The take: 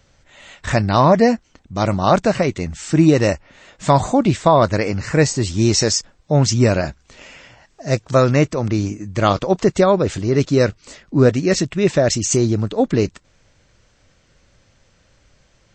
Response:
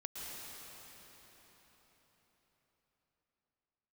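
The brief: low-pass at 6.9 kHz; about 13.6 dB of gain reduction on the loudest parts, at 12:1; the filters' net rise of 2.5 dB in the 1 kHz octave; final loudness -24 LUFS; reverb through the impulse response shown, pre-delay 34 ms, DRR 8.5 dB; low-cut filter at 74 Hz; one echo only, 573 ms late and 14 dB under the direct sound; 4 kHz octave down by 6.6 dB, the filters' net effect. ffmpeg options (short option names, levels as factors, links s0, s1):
-filter_complex "[0:a]highpass=74,lowpass=6900,equalizer=f=1000:t=o:g=3.5,equalizer=f=4000:t=o:g=-8.5,acompressor=threshold=0.0891:ratio=12,aecho=1:1:573:0.2,asplit=2[s0][s1];[1:a]atrim=start_sample=2205,adelay=34[s2];[s1][s2]afir=irnorm=-1:irlink=0,volume=0.376[s3];[s0][s3]amix=inputs=2:normalize=0,volume=1.41"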